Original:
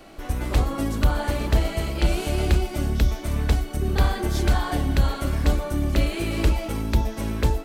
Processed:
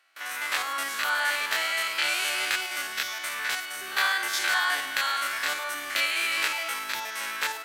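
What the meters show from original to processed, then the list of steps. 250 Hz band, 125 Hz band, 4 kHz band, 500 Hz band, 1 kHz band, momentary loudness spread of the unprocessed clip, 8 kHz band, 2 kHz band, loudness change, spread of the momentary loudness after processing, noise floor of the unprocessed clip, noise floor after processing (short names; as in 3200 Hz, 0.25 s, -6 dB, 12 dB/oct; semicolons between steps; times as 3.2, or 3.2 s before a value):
-24.0 dB, under -40 dB, +7.0 dB, -12.0 dB, +1.0 dB, 3 LU, +5.5 dB, +10.0 dB, -2.0 dB, 6 LU, -35 dBFS, -37 dBFS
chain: stepped spectrum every 50 ms; gate with hold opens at -31 dBFS; resonant high-pass 1600 Hz, resonance Q 1.8; gain +7 dB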